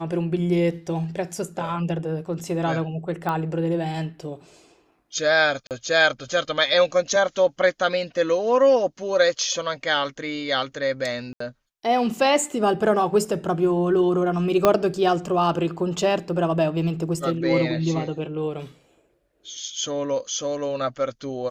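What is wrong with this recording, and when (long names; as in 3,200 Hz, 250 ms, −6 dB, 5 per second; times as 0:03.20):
0:03.29: click −14 dBFS
0:05.67–0:05.71: drop-out 38 ms
0:11.33–0:11.40: drop-out 74 ms
0:14.65: click −4 dBFS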